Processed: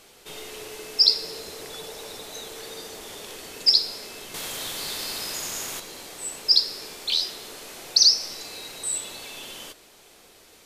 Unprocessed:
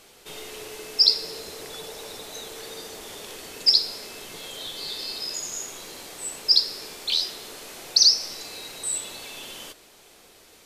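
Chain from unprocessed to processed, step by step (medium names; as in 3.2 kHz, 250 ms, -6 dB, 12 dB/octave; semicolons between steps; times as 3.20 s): 4.34–5.80 s: spectrum-flattening compressor 2:1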